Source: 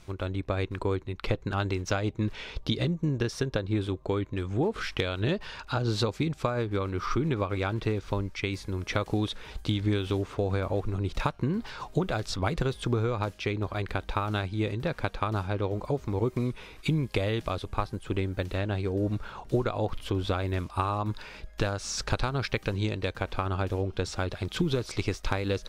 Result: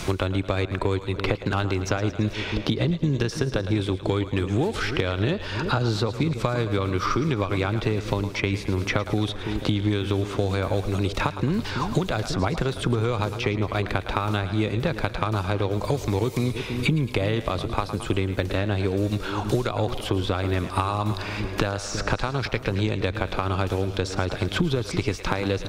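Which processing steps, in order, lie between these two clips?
echo with a time of its own for lows and highs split 490 Hz, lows 330 ms, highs 109 ms, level −13 dB
in parallel at −2 dB: brickwall limiter −22 dBFS, peak gain reduction 9 dB
on the sum: harmonic generator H 7 −34 dB, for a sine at −10.5 dBFS
multiband upward and downward compressor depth 100%

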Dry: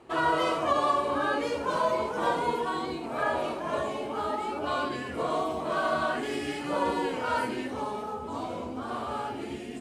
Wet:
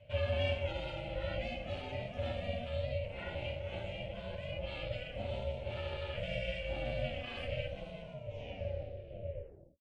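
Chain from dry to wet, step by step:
turntable brake at the end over 1.81 s
pair of resonant band-passes 930 Hz, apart 3 octaves
ring modulation 240 Hz
level +6.5 dB

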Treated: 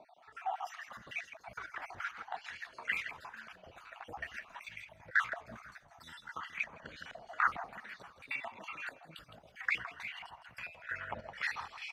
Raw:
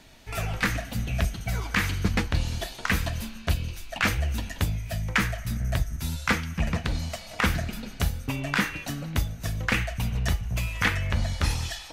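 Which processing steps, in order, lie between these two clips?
time-frequency cells dropped at random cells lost 55%
in parallel at −2 dB: downward compressor, threshold −37 dBFS, peak gain reduction 16 dB
on the sum: transient designer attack −7 dB, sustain +3 dB
square-wave tremolo 2.2 Hz, depth 65%, duty 65%
on a send: echo with shifted repeats 163 ms, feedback 41%, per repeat −38 Hz, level −9 dB
on the sum: band-pass on a step sequencer 4.5 Hz 670–2,200 Hz
level +4 dB

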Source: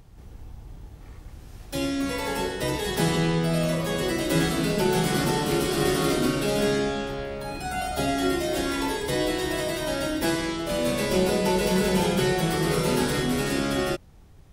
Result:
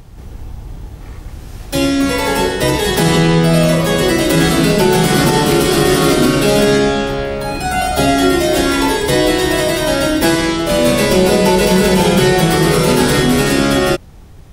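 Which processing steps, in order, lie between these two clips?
boost into a limiter +14 dB
level −1 dB

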